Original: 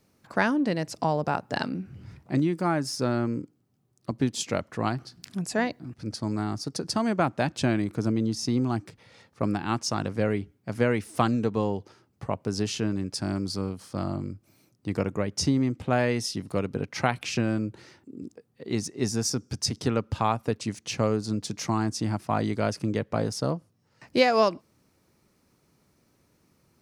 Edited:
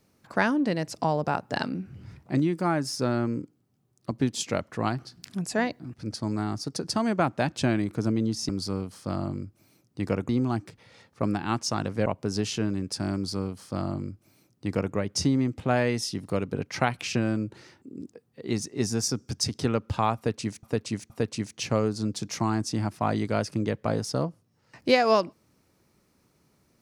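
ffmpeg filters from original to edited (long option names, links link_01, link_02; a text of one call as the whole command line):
ffmpeg -i in.wav -filter_complex "[0:a]asplit=6[link_01][link_02][link_03][link_04][link_05][link_06];[link_01]atrim=end=8.492[link_07];[link_02]atrim=start=13.368:end=15.172[link_08];[link_03]atrim=start=8.488:end=10.262[link_09];[link_04]atrim=start=12.278:end=20.852[link_10];[link_05]atrim=start=20.378:end=20.852[link_11];[link_06]atrim=start=20.378[link_12];[link_07][link_08]acrossfade=duration=0.004:curve1=hsin:curve2=hsin[link_13];[link_13][link_09]acrossfade=duration=0.004:curve1=hsin:curve2=hsin[link_14];[link_14][link_10]acrossfade=duration=0.004:curve1=hsin:curve2=hsin[link_15];[link_15][link_11]acrossfade=duration=0.004:curve1=hsin:curve2=hsin[link_16];[link_16][link_12]acrossfade=duration=0.004:curve1=hsin:curve2=hsin" out.wav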